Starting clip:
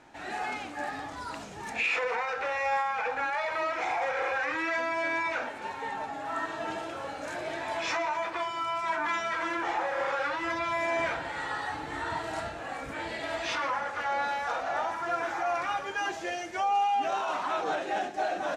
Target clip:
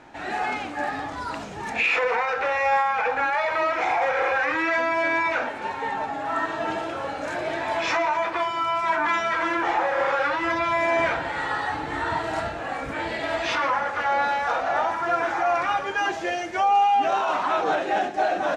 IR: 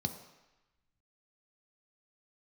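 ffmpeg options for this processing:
-af "highshelf=frequency=5600:gain=-9,volume=7.5dB"

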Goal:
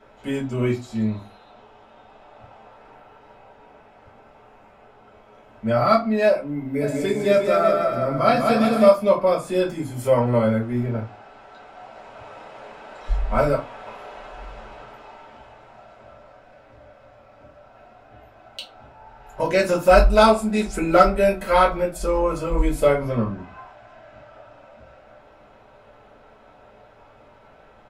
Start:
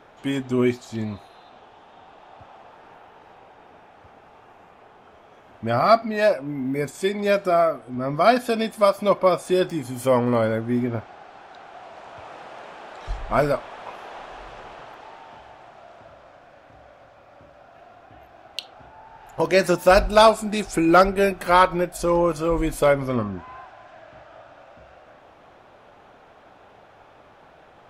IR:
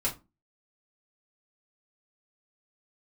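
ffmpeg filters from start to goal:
-filter_complex "[0:a]asplit=3[link_01][link_02][link_03];[link_01]afade=type=out:start_time=6.8:duration=0.02[link_04];[link_02]aecho=1:1:200|360|488|590.4|672.3:0.631|0.398|0.251|0.158|0.1,afade=type=in:start_time=6.8:duration=0.02,afade=type=out:start_time=8.87:duration=0.02[link_05];[link_03]afade=type=in:start_time=8.87:duration=0.02[link_06];[link_04][link_05][link_06]amix=inputs=3:normalize=0[link_07];[1:a]atrim=start_sample=2205[link_08];[link_07][link_08]afir=irnorm=-1:irlink=0,volume=-7dB"

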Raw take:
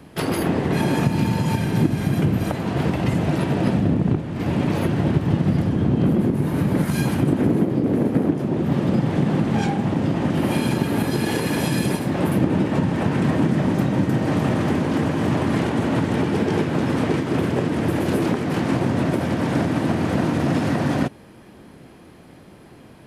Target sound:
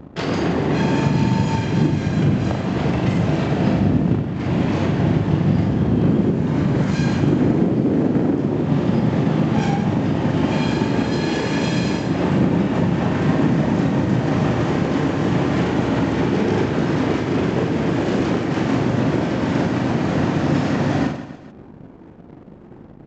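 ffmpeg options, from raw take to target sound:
ffmpeg -i in.wav -af "anlmdn=0.158,acompressor=mode=upward:threshold=-30dB:ratio=2.5,aresample=16000,aeval=exprs='sgn(val(0))*max(abs(val(0))-0.00473,0)':channel_layout=same,aresample=44100,aecho=1:1:40|96|174.4|284.2|437.8:0.631|0.398|0.251|0.158|0.1" out.wav

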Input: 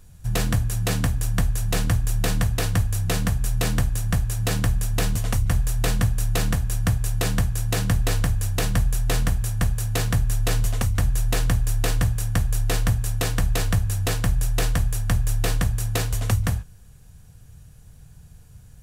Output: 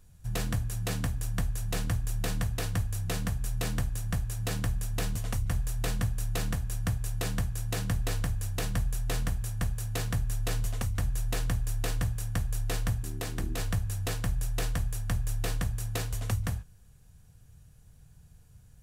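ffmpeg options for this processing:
ffmpeg -i in.wav -filter_complex "[0:a]asettb=1/sr,asplit=3[link_01][link_02][link_03];[link_01]atrim=end=13.034[link_04];[link_02]atrim=start=13.03:end=13.58,asetpts=PTS-STARTPTS,afade=type=in:duration=0.004:curve=qsin,afade=type=out:start_time=0.546:duration=0.004:curve=qsin,tremolo=f=280:d=0.571[link_05];[link_03]atrim=start=13.576[link_06];[link_04][link_05]acrossfade=duration=0.004:curve1=hsin:curve2=qsin[link_07];[link_07][link_06]acrossfade=duration=0.004:curve1=qsin:curve2=hsin,volume=-8.5dB" out.wav

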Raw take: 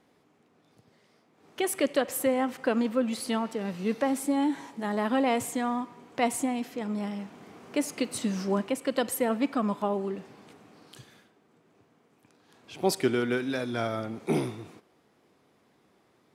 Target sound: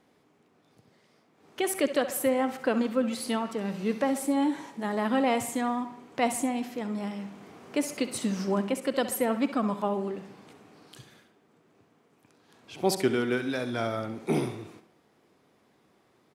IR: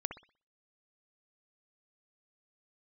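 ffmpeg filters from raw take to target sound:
-filter_complex "[0:a]asplit=2[link_01][link_02];[link_02]aecho=1:1:5.3:0.65[link_03];[1:a]atrim=start_sample=2205,asetrate=40572,aresample=44100,adelay=65[link_04];[link_03][link_04]afir=irnorm=-1:irlink=0,volume=-13.5dB[link_05];[link_01][link_05]amix=inputs=2:normalize=0"

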